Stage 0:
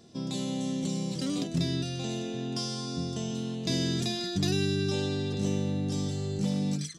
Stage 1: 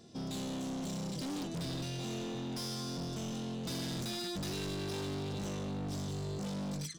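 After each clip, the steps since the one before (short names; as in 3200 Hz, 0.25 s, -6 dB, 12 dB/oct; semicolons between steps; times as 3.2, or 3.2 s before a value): hard clip -35 dBFS, distortion -6 dB; gain -1.5 dB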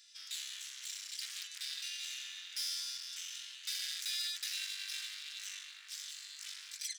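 steep high-pass 1700 Hz 36 dB/oct; gain +4.5 dB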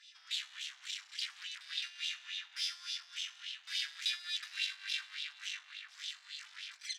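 LFO band-pass sine 3.5 Hz 640–3300 Hz; gain +10 dB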